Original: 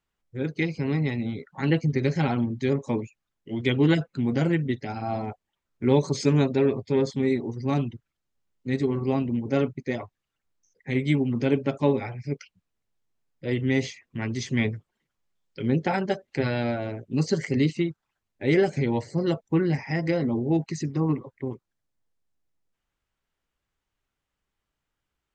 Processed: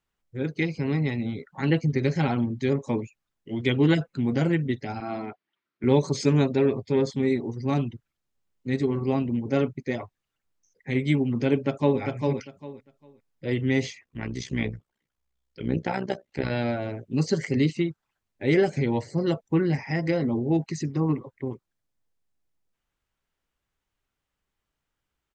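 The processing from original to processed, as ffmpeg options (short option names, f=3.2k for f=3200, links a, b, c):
-filter_complex "[0:a]asettb=1/sr,asplit=3[a][b][c];[a]atrim=end=5.004[d];[b]atrim=start=5:end=5.84,asetpts=PTS-STARTPTS,afade=t=in:d=0.004:c=qsin,afade=t=out:st=0.836:d=0.004:c=qsin,highpass=210,equalizer=f=340:t=q:w=4:g=4,equalizer=f=520:t=q:w=4:g=-7,equalizer=f=820:t=q:w=4:g=-6,equalizer=f=1.4k:t=q:w=4:g=4,equalizer=f=2.1k:t=q:w=4:g=4,lowpass=f=4.9k:w=0.5412,lowpass=f=4.9k:w=1.3066[e];[c]atrim=start=5.836[f];[d][e]acrossfade=d=0.004:c1=hsin:c2=qsin[g];[g][f]acrossfade=d=0.004:c1=qsin:c2=hsin,asplit=2[h][i];[i]afade=t=in:st=11.55:d=0.01,afade=t=out:st=12:d=0.01,aecho=0:1:400|800|1200:0.630957|0.126191|0.0252383[j];[h][j]amix=inputs=2:normalize=0,asettb=1/sr,asplit=3[k][l][m];[k]atrim=end=14.044[n];[l]atrim=start=14.04:end=16.51,asetpts=PTS-STARTPTS,afade=t=in:d=0.004:c=qsin,afade=t=out:st=2.466:d=0.004:c=qsin,tremolo=f=63:d=0.75[o];[m]atrim=start=16.506[p];[n][o]acrossfade=d=0.004:c1=hsin:c2=qsin[q];[q][p]acrossfade=d=0.004:c1=qsin:c2=hsin"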